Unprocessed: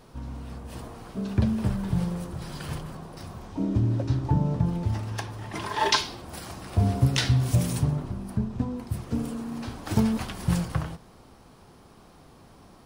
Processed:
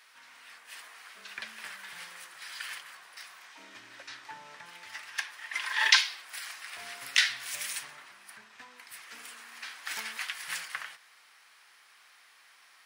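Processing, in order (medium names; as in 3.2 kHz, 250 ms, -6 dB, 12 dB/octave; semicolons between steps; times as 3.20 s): resonant high-pass 1.9 kHz, resonance Q 2.6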